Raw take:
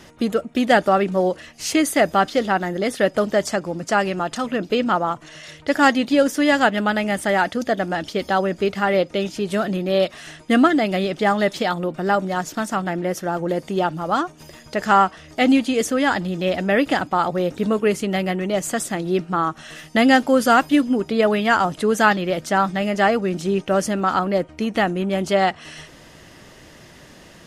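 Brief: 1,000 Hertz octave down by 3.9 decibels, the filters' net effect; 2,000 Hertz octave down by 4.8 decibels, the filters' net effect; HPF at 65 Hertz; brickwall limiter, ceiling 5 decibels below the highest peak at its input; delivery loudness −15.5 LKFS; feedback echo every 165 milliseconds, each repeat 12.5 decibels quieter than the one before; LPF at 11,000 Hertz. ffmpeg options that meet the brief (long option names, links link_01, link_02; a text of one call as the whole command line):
ffmpeg -i in.wav -af "highpass=65,lowpass=11000,equalizer=frequency=1000:width_type=o:gain=-4.5,equalizer=frequency=2000:width_type=o:gain=-4.5,alimiter=limit=-11dB:level=0:latency=1,aecho=1:1:165|330|495:0.237|0.0569|0.0137,volume=7dB" out.wav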